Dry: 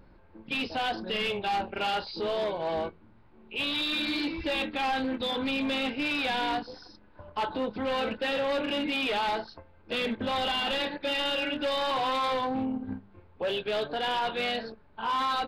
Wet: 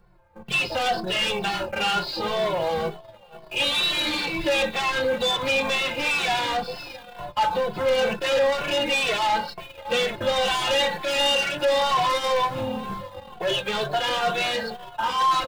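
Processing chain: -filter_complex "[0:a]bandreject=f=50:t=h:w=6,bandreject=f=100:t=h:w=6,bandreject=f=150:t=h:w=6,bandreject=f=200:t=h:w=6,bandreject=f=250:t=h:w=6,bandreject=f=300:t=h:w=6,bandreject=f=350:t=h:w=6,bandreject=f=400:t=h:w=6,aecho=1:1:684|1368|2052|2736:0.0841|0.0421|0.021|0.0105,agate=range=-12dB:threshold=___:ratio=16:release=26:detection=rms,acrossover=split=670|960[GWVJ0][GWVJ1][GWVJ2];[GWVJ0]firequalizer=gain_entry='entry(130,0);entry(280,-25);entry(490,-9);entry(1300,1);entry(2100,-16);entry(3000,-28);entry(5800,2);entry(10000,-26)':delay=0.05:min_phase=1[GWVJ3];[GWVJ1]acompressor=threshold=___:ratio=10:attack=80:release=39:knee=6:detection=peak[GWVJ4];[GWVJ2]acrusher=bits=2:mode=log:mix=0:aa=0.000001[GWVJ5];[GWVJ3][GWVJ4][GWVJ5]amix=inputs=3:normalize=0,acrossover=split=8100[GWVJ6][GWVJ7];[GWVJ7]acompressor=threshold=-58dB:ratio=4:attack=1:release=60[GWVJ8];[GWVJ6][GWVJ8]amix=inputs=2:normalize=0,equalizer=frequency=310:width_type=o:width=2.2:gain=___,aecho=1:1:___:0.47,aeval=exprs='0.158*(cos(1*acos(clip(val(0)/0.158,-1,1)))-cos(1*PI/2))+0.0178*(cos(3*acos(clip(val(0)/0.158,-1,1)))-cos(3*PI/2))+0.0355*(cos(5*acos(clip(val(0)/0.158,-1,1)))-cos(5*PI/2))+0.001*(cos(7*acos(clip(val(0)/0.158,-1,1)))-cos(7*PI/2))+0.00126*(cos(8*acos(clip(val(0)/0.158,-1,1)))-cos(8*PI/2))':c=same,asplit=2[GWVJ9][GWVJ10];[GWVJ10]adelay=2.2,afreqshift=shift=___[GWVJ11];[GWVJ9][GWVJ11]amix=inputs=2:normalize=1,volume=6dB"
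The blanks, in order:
-49dB, -52dB, 13, 5.7, -2.1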